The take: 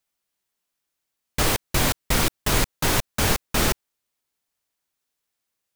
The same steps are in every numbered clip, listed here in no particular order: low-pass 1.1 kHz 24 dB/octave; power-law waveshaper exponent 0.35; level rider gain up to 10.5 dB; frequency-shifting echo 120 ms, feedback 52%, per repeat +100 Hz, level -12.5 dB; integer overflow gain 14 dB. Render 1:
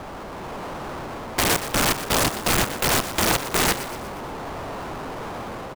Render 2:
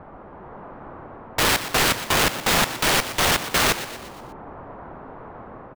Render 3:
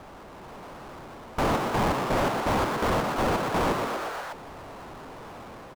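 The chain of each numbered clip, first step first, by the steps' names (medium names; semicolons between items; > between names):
level rider > low-pass > power-law waveshaper > integer overflow > frequency-shifting echo; level rider > power-law waveshaper > low-pass > integer overflow > frequency-shifting echo; level rider > integer overflow > low-pass > frequency-shifting echo > power-law waveshaper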